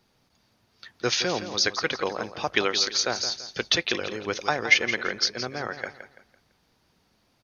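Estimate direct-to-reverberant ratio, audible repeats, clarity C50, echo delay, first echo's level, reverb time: no reverb audible, 3, no reverb audible, 168 ms, −11.0 dB, no reverb audible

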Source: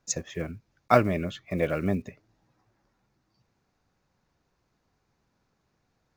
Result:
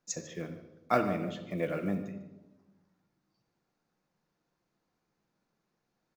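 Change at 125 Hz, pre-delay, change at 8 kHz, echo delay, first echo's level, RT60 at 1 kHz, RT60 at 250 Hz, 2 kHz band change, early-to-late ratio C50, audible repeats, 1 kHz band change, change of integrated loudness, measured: −8.0 dB, 6 ms, can't be measured, 149 ms, −16.0 dB, 1.0 s, 1.4 s, −6.5 dB, 9.0 dB, 1, −6.0 dB, −6.5 dB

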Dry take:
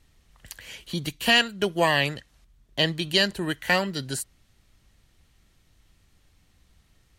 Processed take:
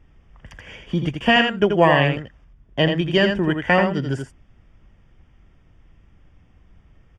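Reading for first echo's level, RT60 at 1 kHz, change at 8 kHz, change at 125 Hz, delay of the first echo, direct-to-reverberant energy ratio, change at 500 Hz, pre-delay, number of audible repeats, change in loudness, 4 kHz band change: −6.0 dB, no reverb audible, below −10 dB, +9.5 dB, 84 ms, no reverb audible, +8.5 dB, no reverb audible, 1, +5.0 dB, −1.0 dB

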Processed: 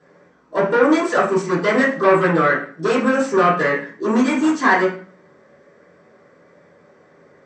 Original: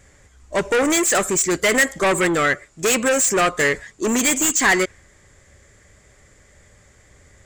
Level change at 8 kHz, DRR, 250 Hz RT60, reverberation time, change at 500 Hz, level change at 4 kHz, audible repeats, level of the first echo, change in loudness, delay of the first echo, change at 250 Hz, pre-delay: −20.0 dB, −9.0 dB, 0.70 s, 0.45 s, +3.5 dB, −8.0 dB, no echo audible, no echo audible, +1.0 dB, no echo audible, +4.5 dB, 3 ms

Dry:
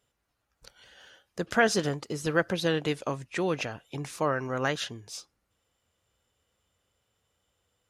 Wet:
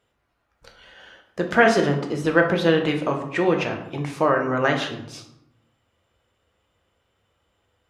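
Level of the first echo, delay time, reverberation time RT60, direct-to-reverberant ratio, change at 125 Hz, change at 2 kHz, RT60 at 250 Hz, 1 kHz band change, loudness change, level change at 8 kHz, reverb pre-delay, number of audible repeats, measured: no echo audible, no echo audible, 0.75 s, 3.0 dB, +7.0 dB, +7.5 dB, 1.1 s, +8.5 dB, +8.0 dB, −2.5 dB, 3 ms, no echo audible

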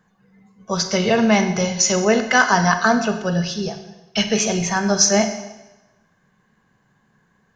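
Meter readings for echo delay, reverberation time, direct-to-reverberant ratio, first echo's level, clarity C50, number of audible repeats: no echo audible, 1.0 s, 8.0 dB, no echo audible, 9.5 dB, no echo audible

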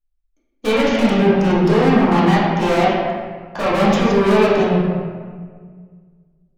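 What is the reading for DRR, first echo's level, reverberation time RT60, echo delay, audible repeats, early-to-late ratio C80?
−10.0 dB, no echo audible, 1.7 s, no echo audible, no echo audible, 1.0 dB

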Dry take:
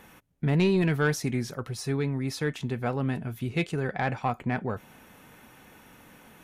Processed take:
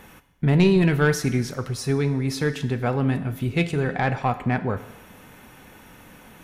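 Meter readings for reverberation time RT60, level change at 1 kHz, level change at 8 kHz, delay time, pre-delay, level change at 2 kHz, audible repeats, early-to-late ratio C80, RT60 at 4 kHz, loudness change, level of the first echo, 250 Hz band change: 1.1 s, +5.0 dB, +5.0 dB, no echo audible, 7 ms, +5.0 dB, no echo audible, 15.0 dB, 1.1 s, +5.5 dB, no echo audible, +6.0 dB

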